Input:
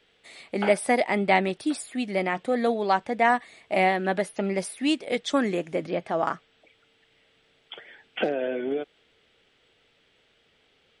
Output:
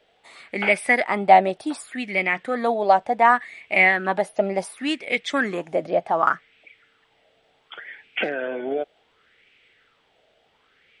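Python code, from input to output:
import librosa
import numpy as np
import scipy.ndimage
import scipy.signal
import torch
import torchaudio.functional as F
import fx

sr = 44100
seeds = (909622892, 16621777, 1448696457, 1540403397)

y = fx.bell_lfo(x, sr, hz=0.68, low_hz=640.0, high_hz=2400.0, db=15)
y = y * librosa.db_to_amplitude(-2.0)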